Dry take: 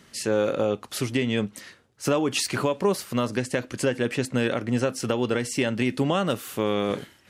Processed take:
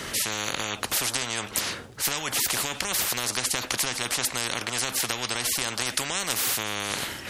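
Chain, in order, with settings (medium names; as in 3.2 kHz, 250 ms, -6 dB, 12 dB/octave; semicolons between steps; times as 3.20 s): spectrum-flattening compressor 10:1; trim +3.5 dB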